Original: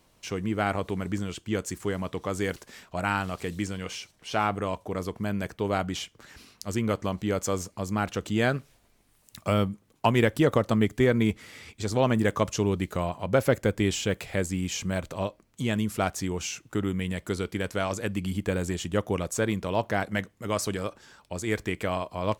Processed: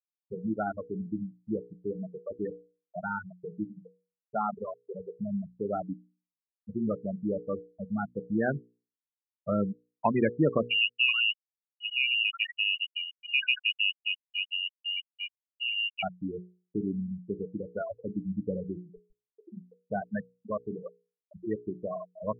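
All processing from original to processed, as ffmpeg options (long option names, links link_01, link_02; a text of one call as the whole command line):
ffmpeg -i in.wav -filter_complex "[0:a]asettb=1/sr,asplit=3[link_01][link_02][link_03];[link_01]atrim=end=10.684[link_04];[link_02]atrim=start=10.68:end=16.03,asetpts=PTS-STARTPTS,afade=type=in:duration=0.004:curve=qsin,afade=type=out:start_time=5.346:duration=0.004:curve=qsin,equalizer=frequency=680:width_type=o:width=1.5:gain=-2.5,acrossover=split=1000[link_05][link_06];[link_06]adelay=80[link_07];[link_05][link_07]amix=inputs=2:normalize=0,atrim=end_sample=235935,lowpass=frequency=2600:width_type=q:width=0.5098,lowpass=frequency=2600:width_type=q:width=0.6013,lowpass=frequency=2600:width_type=q:width=0.9,lowpass=frequency=2600:width_type=q:width=2.563,afreqshift=-3000[link_08];[link_03]atrim=start=16.026[link_09];[link_04][link_08]acrossfade=duration=0.004:curve1=hsin:curve2=qsin[link_10];[link_10][link_09]acrossfade=duration=0.004:curve1=qsin:curve2=hsin,asettb=1/sr,asplit=3[link_11][link_12][link_13];[link_11]atrim=end=18.824[link_14];[link_12]atrim=start=18.82:end=19.89,asetpts=PTS-STARTPTS,afade=type=in:duration=0.004:curve=qsin,afade=type=out:start_time=1.066:duration=0.004:curve=qsin,aeval=exprs='clip(val(0),-1,0.0282)':channel_layout=same,acompressor=threshold=-30dB:ratio=10:attack=3.2:release=140:knee=1:detection=peak[link_15];[link_13]atrim=start=19.886[link_16];[link_14][link_15]acrossfade=duration=0.004:curve1=hsin:curve2=qsin[link_17];[link_17][link_16]acrossfade=duration=0.004:curve1=qsin:curve2=hsin,afftfilt=real='re*gte(hypot(re,im),0.178)':imag='im*gte(hypot(re,im),0.178)':win_size=1024:overlap=0.75,lowshelf=frequency=120:width_type=q:width=1.5:gain=-10,bandreject=frequency=60:width_type=h:width=6,bandreject=frequency=120:width_type=h:width=6,bandreject=frequency=180:width_type=h:width=6,bandreject=frequency=240:width_type=h:width=6,bandreject=frequency=300:width_type=h:width=6,bandreject=frequency=360:width_type=h:width=6,bandreject=frequency=420:width_type=h:width=6,bandreject=frequency=480:width_type=h:width=6,volume=-2.5dB" out.wav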